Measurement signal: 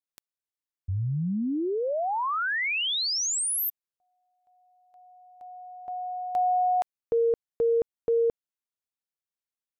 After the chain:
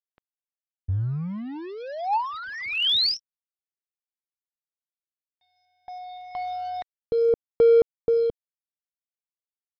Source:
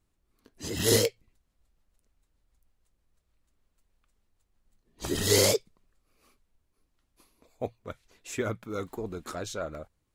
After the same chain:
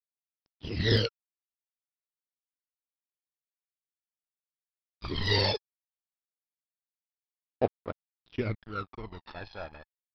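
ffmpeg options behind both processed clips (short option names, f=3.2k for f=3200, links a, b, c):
-af "aresample=11025,aeval=exprs='sgn(val(0))*max(abs(val(0))-0.00841,0)':c=same,aresample=44100,aphaser=in_gain=1:out_gain=1:delay=1.2:decay=0.71:speed=0.26:type=sinusoidal,volume=-2dB"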